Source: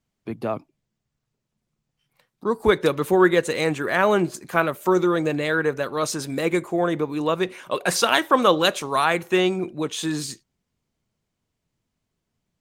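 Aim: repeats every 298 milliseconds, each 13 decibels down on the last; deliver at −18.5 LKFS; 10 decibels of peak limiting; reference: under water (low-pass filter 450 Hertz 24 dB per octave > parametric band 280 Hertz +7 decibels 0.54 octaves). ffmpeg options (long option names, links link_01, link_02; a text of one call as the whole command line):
ffmpeg -i in.wav -af "alimiter=limit=-13.5dB:level=0:latency=1,lowpass=frequency=450:width=0.5412,lowpass=frequency=450:width=1.3066,equalizer=frequency=280:width_type=o:width=0.54:gain=7,aecho=1:1:298|596|894:0.224|0.0493|0.0108,volume=7dB" out.wav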